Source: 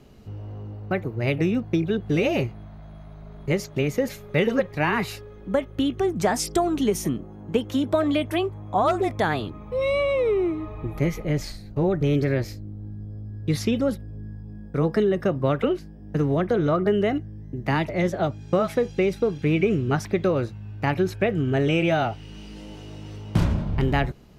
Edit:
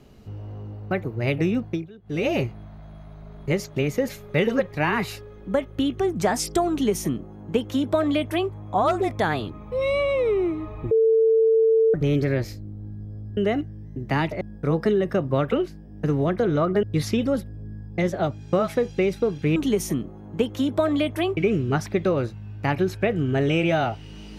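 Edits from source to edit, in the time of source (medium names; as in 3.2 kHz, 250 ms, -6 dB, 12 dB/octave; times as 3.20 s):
1.63–2.29 s: dip -21 dB, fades 0.27 s
6.71–8.52 s: copy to 19.56 s
10.91–11.94 s: bleep 447 Hz -14.5 dBFS
13.37–14.52 s: swap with 16.94–17.98 s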